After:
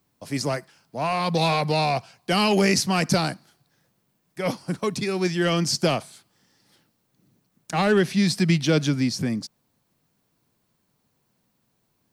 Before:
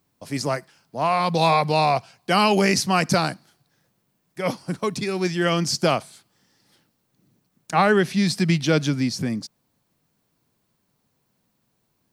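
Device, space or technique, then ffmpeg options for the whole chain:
one-band saturation: -filter_complex "[0:a]acrossover=split=550|2100[link_01][link_02][link_03];[link_02]asoftclip=type=tanh:threshold=-25.5dB[link_04];[link_01][link_04][link_03]amix=inputs=3:normalize=0"

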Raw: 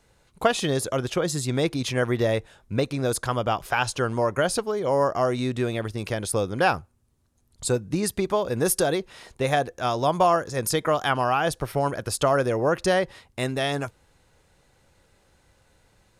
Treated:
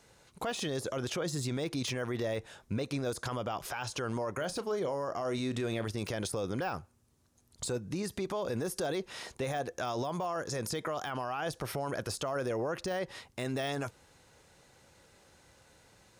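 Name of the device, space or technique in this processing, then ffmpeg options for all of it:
broadcast voice chain: -filter_complex "[0:a]highpass=frequency=120:poles=1,deesser=0.7,acompressor=threshold=-28dB:ratio=3,equalizer=frequency=5900:width_type=o:width=0.7:gain=3.5,alimiter=level_in=3.5dB:limit=-24dB:level=0:latency=1:release=18,volume=-3.5dB,asettb=1/sr,asplit=3[link_01][link_02][link_03];[link_01]atrim=end=4.354[link_04];[link_02]atrim=start=4.35:end=5.85,asetpts=PTS-STARTPTS,afade=type=in:duration=0.004:curve=qsin,afade=type=out:start_time=1.496:duration=0.004:curve=qsin,asplit=2[link_05][link_06];[link_06]adelay=35,volume=-13.5dB[link_07];[link_05][link_07]amix=inputs=2:normalize=0,atrim=end_sample=66150[link_08];[link_03]atrim=start=5.846[link_09];[link_04][link_08]acrossfade=duration=0.004:curve1=hsin:curve2=qsin[link_10];[link_10][link_09]acrossfade=duration=0.004:curve1=qsin:curve2=hsin,volume=1.5dB"

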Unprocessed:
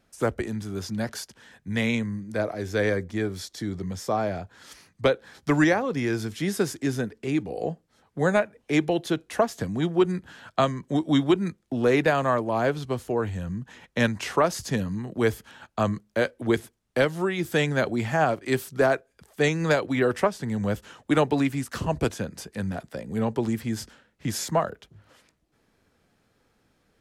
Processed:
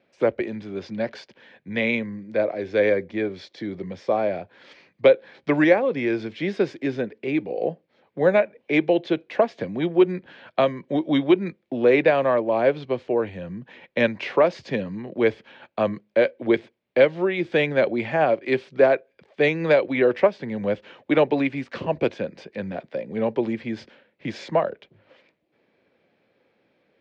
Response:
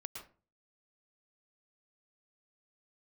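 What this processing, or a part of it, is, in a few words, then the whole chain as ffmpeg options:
kitchen radio: -af "highpass=170,equalizer=frequency=360:width_type=q:width=4:gain=4,equalizer=frequency=550:width_type=q:width=4:gain=9,equalizer=frequency=1300:width_type=q:width=4:gain=-5,equalizer=frequency=2300:width_type=q:width=4:gain=7,lowpass=frequency=4000:width=0.5412,lowpass=frequency=4000:width=1.3066"

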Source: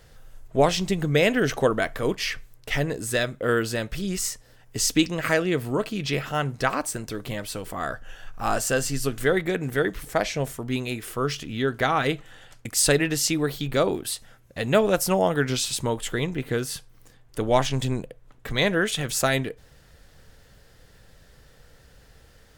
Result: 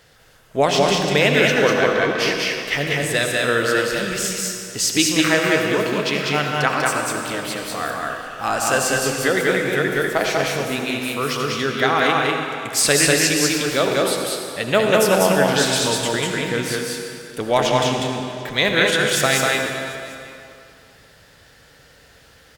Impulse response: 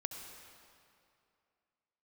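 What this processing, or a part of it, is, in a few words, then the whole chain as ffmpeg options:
stadium PA: -filter_complex "[0:a]asettb=1/sr,asplit=3[link_01][link_02][link_03];[link_01]atrim=end=1.554[link_04];[link_02]atrim=start=1.55:end=2.19,asetpts=PTS-STARTPTS,afade=type=in:duration=0.004:curve=qsin,afade=type=out:start_time=0.636:duration=0.004:curve=qsin,lowpass=frequency=5400:width=0.5412,lowpass=frequency=5400:width=1.3066[link_05];[link_03]atrim=start=2.186[link_06];[link_04][link_05]acrossfade=duration=0.004:curve1=hsin:curve2=qsin[link_07];[link_07][link_06]acrossfade=duration=0.004:curve1=qsin:curve2=hsin,highpass=frequency=170:poles=1,equalizer=frequency=2700:width_type=o:width=2.4:gain=4.5,aecho=1:1:195.3|227.4:0.794|0.316[link_08];[1:a]atrim=start_sample=2205[link_09];[link_08][link_09]afir=irnorm=-1:irlink=0,aecho=1:1:740:0.0708,volume=3.5dB"

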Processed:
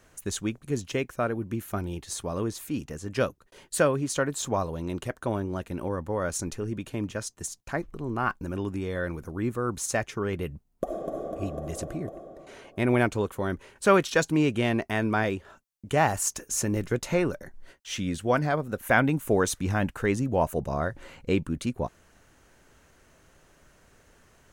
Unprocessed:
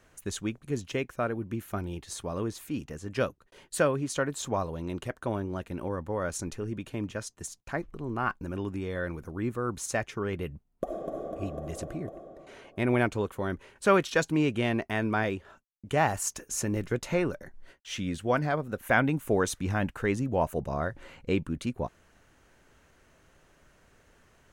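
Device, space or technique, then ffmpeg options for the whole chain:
exciter from parts: -filter_complex "[0:a]asplit=2[link_01][link_02];[link_02]highpass=3800,asoftclip=type=tanh:threshold=-34.5dB,volume=-6dB[link_03];[link_01][link_03]amix=inputs=2:normalize=0,volume=2.5dB"

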